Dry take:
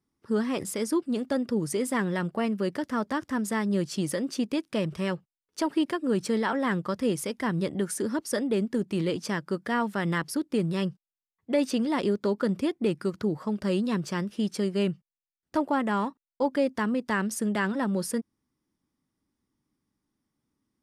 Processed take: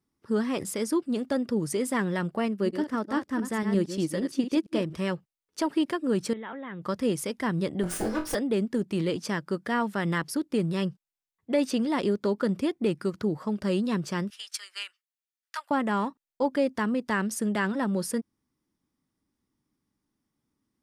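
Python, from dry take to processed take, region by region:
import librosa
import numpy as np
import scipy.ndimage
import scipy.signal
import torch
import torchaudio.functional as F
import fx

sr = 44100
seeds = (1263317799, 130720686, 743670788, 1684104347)

y = fx.chain(x, sr, fx.reverse_delay(ms=115, wet_db=-7),
    fx.peak_eq(hz=330.0, db=5.5, octaves=0.58),
    fx.upward_expand(threshold_db=-34.0, expansion=1.5), at=(2.48, 4.95))
y = fx.chain(y, sr, fx.peak_eq(hz=2100.0, db=4.5, octaves=0.22),
    fx.level_steps(step_db=19),
    fx.brickwall_lowpass(high_hz=3900.0), at=(6.33, 6.82))
y = fx.chain(y, sr, fx.lower_of_two(delay_ms=6.0),
    fx.room_flutter(wall_m=3.9, rt60_s=0.26), at=(7.83, 8.35))
y = fx.chain(y, sr, fx.highpass(hz=1300.0, slope=24),
    fx.transient(attack_db=6, sustain_db=-1), at=(14.3, 15.71))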